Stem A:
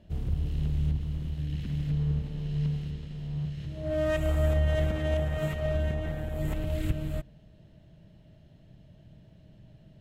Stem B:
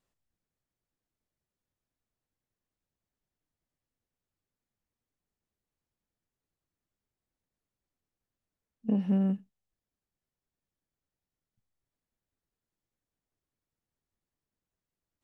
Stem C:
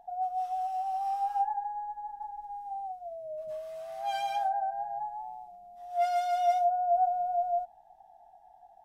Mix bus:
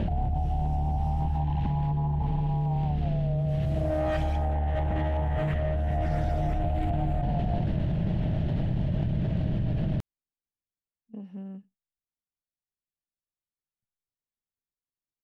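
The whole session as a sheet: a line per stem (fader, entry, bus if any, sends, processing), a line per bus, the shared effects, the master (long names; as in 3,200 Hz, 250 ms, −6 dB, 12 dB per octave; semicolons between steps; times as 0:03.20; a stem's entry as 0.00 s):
−4.5 dB, 0.00 s, no send, bass and treble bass +4 dB, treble −15 dB; soft clipping −19 dBFS, distortion −17 dB; envelope flattener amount 100%
−13.0 dB, 2.25 s, no send, no processing
+2.5 dB, 0.00 s, no send, downward compressor, threshold −38 dBFS, peak gain reduction 15.5 dB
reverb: not used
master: highs frequency-modulated by the lows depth 0.27 ms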